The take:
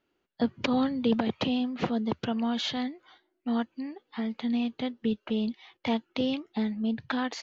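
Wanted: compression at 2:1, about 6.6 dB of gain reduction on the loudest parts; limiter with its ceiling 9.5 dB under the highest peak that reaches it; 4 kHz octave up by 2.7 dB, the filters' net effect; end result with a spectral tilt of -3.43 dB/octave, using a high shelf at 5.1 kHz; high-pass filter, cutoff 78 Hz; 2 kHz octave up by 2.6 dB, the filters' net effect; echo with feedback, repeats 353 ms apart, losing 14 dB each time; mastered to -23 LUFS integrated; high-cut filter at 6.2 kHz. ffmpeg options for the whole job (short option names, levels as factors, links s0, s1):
-af "highpass=78,lowpass=6200,equalizer=f=2000:t=o:g=3,equalizer=f=4000:t=o:g=5.5,highshelf=f=5100:g=-7,acompressor=threshold=0.0224:ratio=2,alimiter=level_in=1.19:limit=0.0631:level=0:latency=1,volume=0.841,aecho=1:1:353|706:0.2|0.0399,volume=4.73"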